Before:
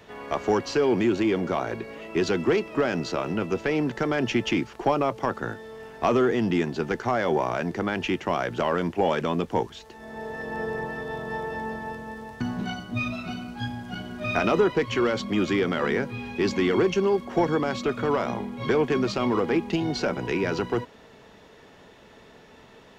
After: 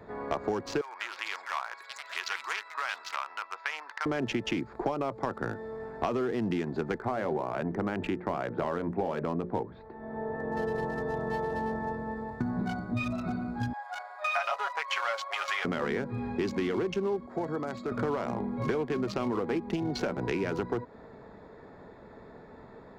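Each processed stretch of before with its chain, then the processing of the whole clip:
0.81–4.06 Chebyshev band-pass 1000–5800 Hz, order 3 + echoes that change speed 0.182 s, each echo +7 st, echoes 2, each echo -6 dB
6.98–10.57 air absorption 350 m + notches 60/120/180/240/300/360/420/480/540/600 Hz
13.73–15.65 steep high-pass 610 Hz 48 dB/oct + dynamic EQ 1300 Hz, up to +3 dB, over -40 dBFS, Q 0.85 + comb 7.2 ms, depth 67%
17.26–17.92 HPF 62 Hz + high shelf 3800 Hz +11 dB + resonator 650 Hz, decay 0.26 s, mix 70%
whole clip: Wiener smoothing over 15 samples; compressor, threshold -30 dBFS; gain +2.5 dB

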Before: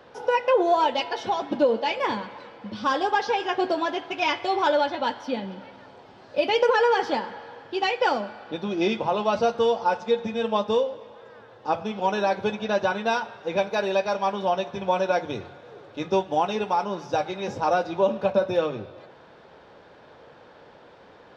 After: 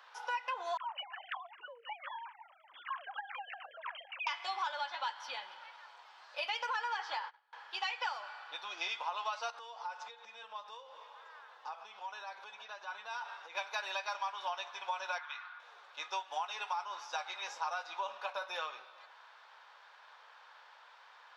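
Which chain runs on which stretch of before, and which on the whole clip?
0.77–4.27 sine-wave speech + dispersion lows, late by 0.1 s, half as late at 840 Hz + compressor 2.5:1, threshold -37 dBFS
6.97–7.53 gate -36 dBFS, range -27 dB + air absorption 57 m
9.5–13.55 low shelf 480 Hz +9 dB + compressor, threshold -31 dBFS
15.18–15.6 resonant high-pass 1300 Hz, resonance Q 2.3 + air absorption 210 m
whole clip: Chebyshev high-pass 1000 Hz, order 3; compressor 5:1, threshold -32 dBFS; gain -2 dB

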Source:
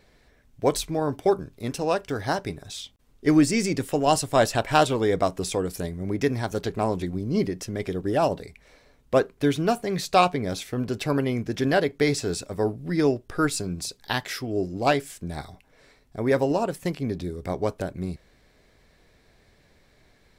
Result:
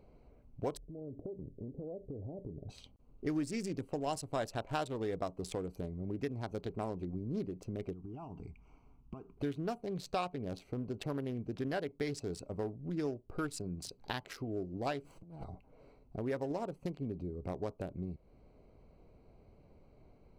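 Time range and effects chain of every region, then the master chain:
0.77–2.69 steep low-pass 590 Hz + compressor, threshold -37 dBFS
7.93–9.37 compressor 8:1, threshold -34 dBFS + fixed phaser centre 2700 Hz, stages 8
15.04–15.44 minimum comb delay 6.1 ms + negative-ratio compressor -40 dBFS, ratio -0.5 + mismatched tape noise reduction encoder only
whole clip: Wiener smoothing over 25 samples; compressor 2.5:1, threshold -41 dBFS

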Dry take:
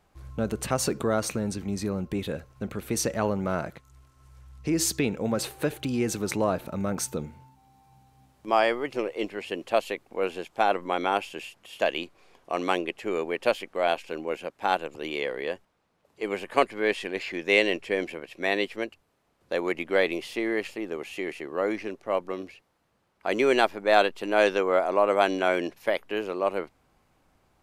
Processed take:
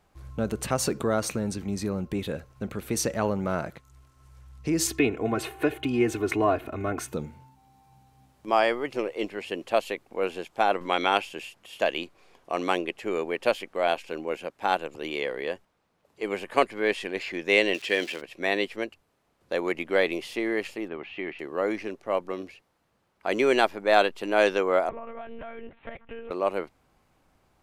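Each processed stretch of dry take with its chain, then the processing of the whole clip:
4.87–7.13 HPF 49 Hz + resonant high shelf 3500 Hz -8.5 dB, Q 1.5 + comb 2.8 ms, depth 91%
10.81–11.22 bell 3400 Hz +8 dB 2.2 oct + upward compressor, threshold -33 dBFS
17.73–18.2 notch 2200 Hz, Q 7.5 + crackle 490/s -40 dBFS + weighting filter D
20.88–21.39 LPF 3300 Hz 24 dB/oct + bell 480 Hz -6.5 dB 0.51 oct
24.89–26.31 LPF 2500 Hz + compressor 10:1, threshold -34 dBFS + monotone LPC vocoder at 8 kHz 230 Hz
whole clip: dry

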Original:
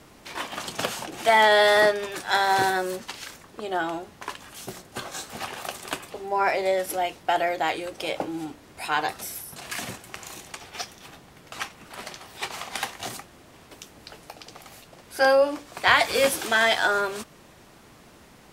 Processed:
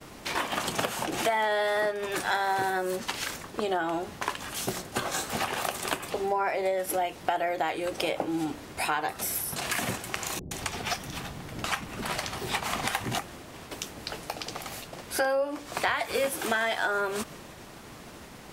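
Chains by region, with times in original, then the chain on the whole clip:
10.39–13.19 low shelf 320 Hz +6.5 dB + bands offset in time lows, highs 0.12 s, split 440 Hz
whole clip: expander -48 dBFS; dynamic EQ 4800 Hz, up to -6 dB, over -41 dBFS, Q 0.82; compressor 6:1, threshold -33 dBFS; gain +7.5 dB

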